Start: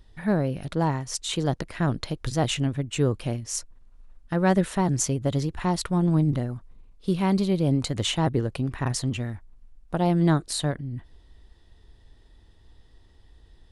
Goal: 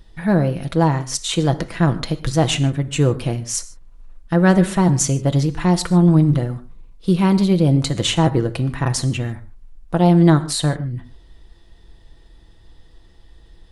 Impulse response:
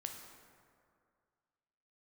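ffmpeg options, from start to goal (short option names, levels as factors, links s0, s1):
-filter_complex "[0:a]asplit=2[s0][s1];[1:a]atrim=start_sample=2205,afade=t=out:st=0.2:d=0.01,atrim=end_sample=9261,adelay=6[s2];[s1][s2]afir=irnorm=-1:irlink=0,volume=0.631[s3];[s0][s3]amix=inputs=2:normalize=0,volume=2"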